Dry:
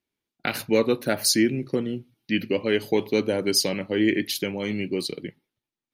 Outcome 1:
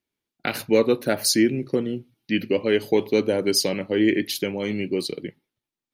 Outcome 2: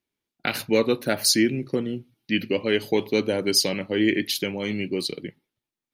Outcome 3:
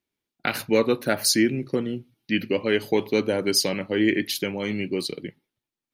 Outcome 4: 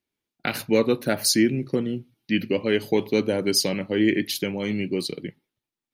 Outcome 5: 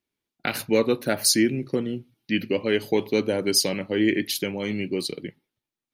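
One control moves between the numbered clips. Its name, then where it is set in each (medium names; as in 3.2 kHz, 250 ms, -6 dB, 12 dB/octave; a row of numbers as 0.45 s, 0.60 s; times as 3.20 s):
dynamic bell, frequency: 440 Hz, 3.5 kHz, 1.3 kHz, 160 Hz, 9.8 kHz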